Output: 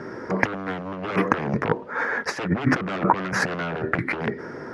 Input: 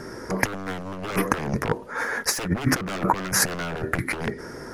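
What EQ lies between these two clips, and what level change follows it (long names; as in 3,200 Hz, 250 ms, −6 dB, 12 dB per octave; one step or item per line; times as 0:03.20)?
high-pass filter 120 Hz 12 dB per octave
low-pass filter 2,800 Hz 12 dB per octave
+2.5 dB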